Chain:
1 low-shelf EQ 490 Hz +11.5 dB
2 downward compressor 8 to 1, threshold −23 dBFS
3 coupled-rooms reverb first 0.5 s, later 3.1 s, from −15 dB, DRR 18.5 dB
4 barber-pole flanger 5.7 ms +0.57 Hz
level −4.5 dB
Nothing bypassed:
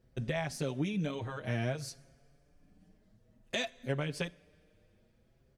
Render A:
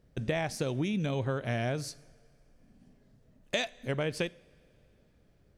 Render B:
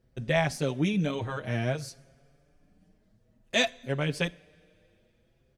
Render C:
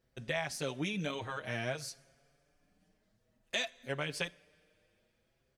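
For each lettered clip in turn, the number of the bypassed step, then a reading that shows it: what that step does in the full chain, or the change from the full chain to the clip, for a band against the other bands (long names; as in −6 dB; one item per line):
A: 4, 500 Hz band +1.5 dB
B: 2, average gain reduction 5.0 dB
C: 1, 125 Hz band −8.0 dB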